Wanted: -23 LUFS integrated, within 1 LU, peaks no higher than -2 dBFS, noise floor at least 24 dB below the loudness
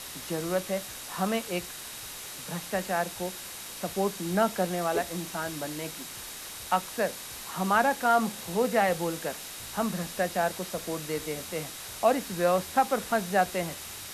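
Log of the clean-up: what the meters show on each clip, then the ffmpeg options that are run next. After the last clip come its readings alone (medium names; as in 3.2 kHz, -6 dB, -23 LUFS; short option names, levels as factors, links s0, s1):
steady tone 3.8 kHz; tone level -52 dBFS; noise floor -41 dBFS; noise floor target -54 dBFS; loudness -29.5 LUFS; peak level -11.0 dBFS; loudness target -23.0 LUFS
-> -af "bandreject=f=3800:w=30"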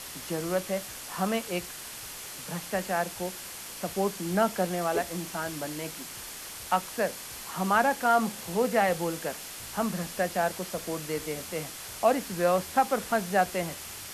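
steady tone not found; noise floor -42 dBFS; noise floor target -54 dBFS
-> -af "afftdn=nr=12:nf=-42"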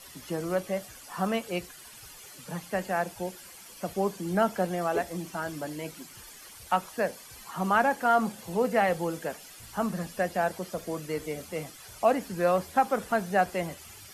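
noise floor -49 dBFS; noise floor target -54 dBFS
-> -af "afftdn=nr=6:nf=-49"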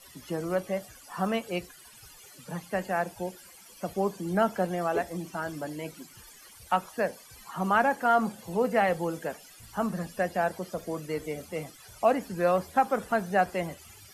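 noise floor -52 dBFS; noise floor target -54 dBFS
-> -af "afftdn=nr=6:nf=-52"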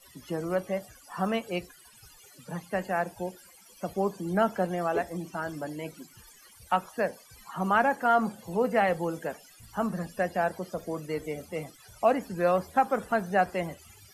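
noise floor -55 dBFS; loudness -29.5 LUFS; peak level -11.0 dBFS; loudness target -23.0 LUFS
-> -af "volume=2.11"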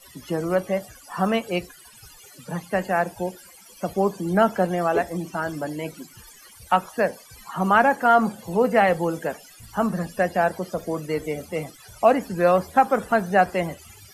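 loudness -23.0 LUFS; peak level -4.5 dBFS; noise floor -49 dBFS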